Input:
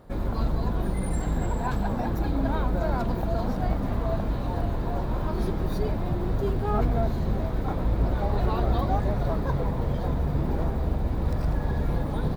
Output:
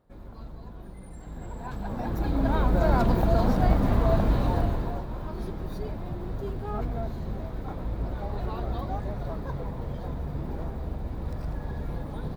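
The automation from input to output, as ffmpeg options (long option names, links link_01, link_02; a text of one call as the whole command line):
ffmpeg -i in.wav -af "volume=4.5dB,afade=type=in:start_time=1.18:duration=0.61:silence=0.398107,afade=type=in:start_time=1.79:duration=1.19:silence=0.237137,afade=type=out:start_time=4.42:duration=0.63:silence=0.266073" out.wav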